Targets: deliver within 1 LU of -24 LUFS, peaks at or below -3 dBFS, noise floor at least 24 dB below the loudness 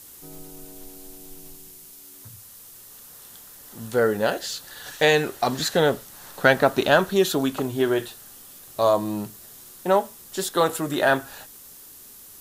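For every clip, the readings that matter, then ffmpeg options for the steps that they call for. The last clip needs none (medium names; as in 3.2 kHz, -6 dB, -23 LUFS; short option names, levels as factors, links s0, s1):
noise floor -46 dBFS; noise floor target -47 dBFS; loudness -22.5 LUFS; peak level -5.0 dBFS; loudness target -24.0 LUFS
-> -af "afftdn=nr=6:nf=-46"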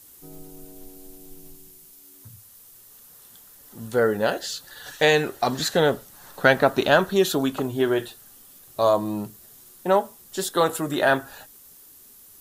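noise floor -50 dBFS; loudness -22.5 LUFS; peak level -5.0 dBFS; loudness target -24.0 LUFS
-> -af "volume=0.841"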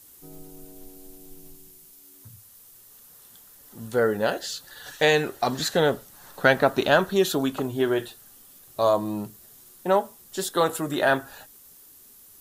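loudness -24.0 LUFS; peak level -6.5 dBFS; noise floor -51 dBFS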